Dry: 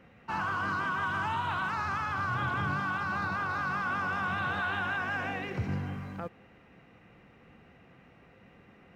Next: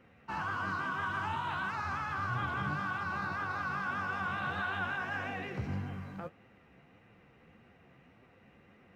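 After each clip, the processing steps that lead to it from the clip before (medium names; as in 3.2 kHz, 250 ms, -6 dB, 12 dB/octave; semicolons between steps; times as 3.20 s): flange 1.7 Hz, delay 7.6 ms, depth 8.1 ms, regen +35%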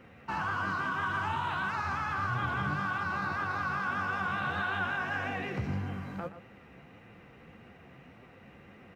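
in parallel at +2 dB: compression, threshold -44 dBFS, peak gain reduction 13 dB; on the sum: echo from a far wall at 21 m, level -12 dB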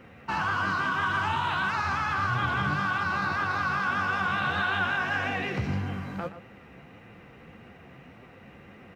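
dynamic bell 4 kHz, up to +5 dB, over -53 dBFS, Q 0.72; trim +4 dB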